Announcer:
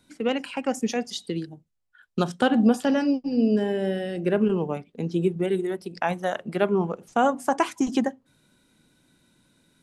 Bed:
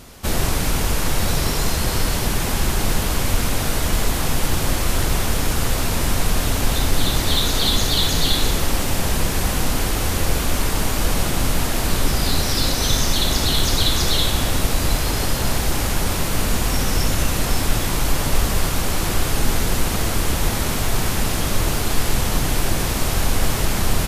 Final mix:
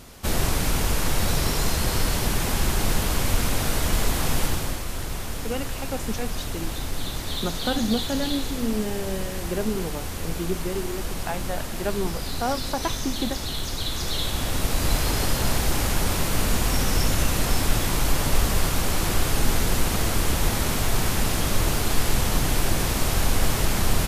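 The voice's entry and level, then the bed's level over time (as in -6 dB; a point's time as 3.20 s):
5.25 s, -5.5 dB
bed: 4.42 s -3 dB
4.85 s -11 dB
13.76 s -11 dB
14.98 s -2.5 dB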